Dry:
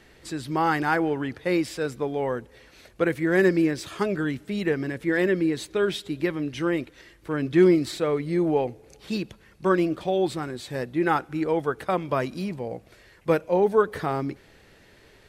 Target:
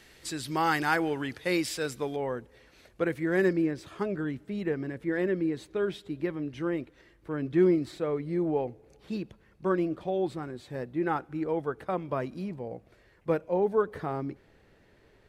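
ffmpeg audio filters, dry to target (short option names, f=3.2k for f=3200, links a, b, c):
-af "asetnsamples=n=441:p=0,asendcmd='2.16 highshelf g -3;3.53 highshelf g -10',highshelf=f=2.1k:g=9.5,volume=-5dB"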